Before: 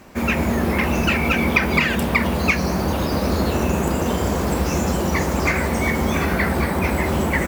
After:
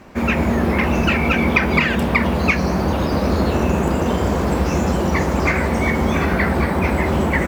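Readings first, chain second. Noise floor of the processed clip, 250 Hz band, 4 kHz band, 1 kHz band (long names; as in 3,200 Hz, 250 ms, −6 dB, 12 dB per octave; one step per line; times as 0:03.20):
−21 dBFS, +2.5 dB, −0.5 dB, +2.0 dB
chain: low-pass filter 3,400 Hz 6 dB per octave
level +2.5 dB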